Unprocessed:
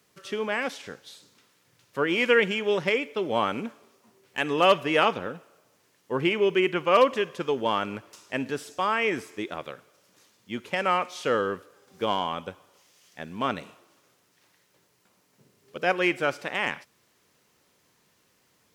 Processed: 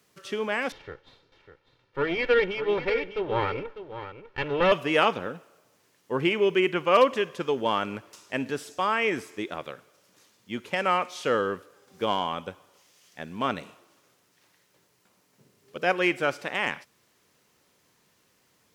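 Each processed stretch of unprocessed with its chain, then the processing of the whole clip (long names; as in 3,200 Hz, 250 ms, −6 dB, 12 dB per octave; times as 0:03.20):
0:00.72–0:04.72: lower of the sound and its delayed copy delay 2.2 ms + high-frequency loss of the air 300 metres + single-tap delay 599 ms −11.5 dB
whole clip: no processing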